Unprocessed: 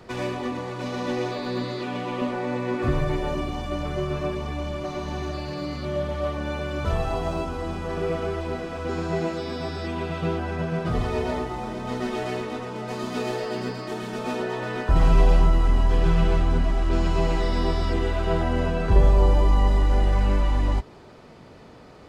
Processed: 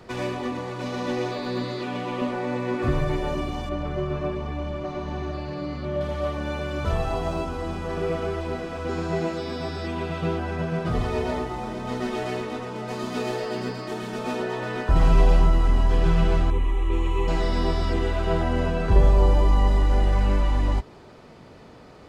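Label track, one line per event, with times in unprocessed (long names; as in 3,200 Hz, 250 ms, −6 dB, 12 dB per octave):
3.690000	6.010000	low-pass filter 2,200 Hz 6 dB per octave
16.500000	17.280000	phaser with its sweep stopped centre 1,000 Hz, stages 8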